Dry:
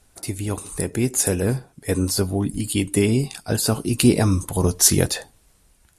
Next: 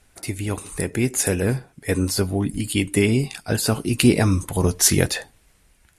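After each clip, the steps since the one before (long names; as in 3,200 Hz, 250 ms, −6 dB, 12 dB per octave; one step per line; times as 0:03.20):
drawn EQ curve 1,100 Hz 0 dB, 2,100 Hz +6 dB, 3,900 Hz 0 dB, 8,400 Hz −2 dB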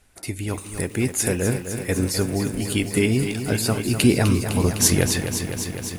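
feedback echo at a low word length 254 ms, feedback 80%, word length 7 bits, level −8.5 dB
level −1.5 dB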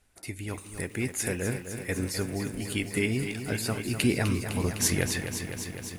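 dynamic equaliser 2,000 Hz, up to +6 dB, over −44 dBFS, Q 1.7
level −8.5 dB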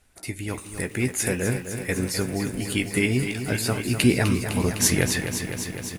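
double-tracking delay 16 ms −11 dB
level +5 dB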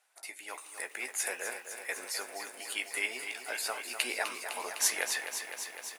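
four-pole ladder high-pass 590 Hz, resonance 30%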